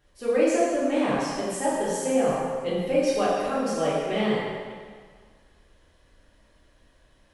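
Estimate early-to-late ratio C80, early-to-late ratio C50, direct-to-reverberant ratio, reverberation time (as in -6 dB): 0.0 dB, -2.0 dB, -9.5 dB, 1.7 s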